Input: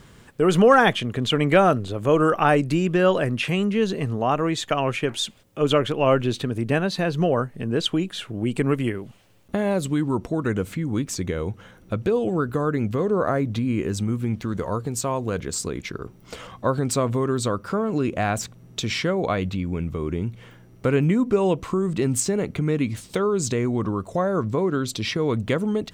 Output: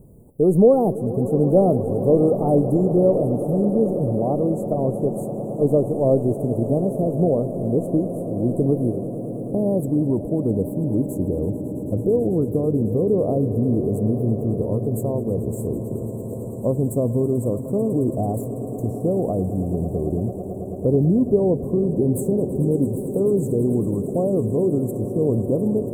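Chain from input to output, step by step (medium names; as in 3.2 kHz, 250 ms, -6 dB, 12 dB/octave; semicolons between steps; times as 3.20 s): inverse Chebyshev band-stop 1.6–4.9 kHz, stop band 60 dB; echo with a slow build-up 110 ms, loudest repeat 8, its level -17 dB; trim +2.5 dB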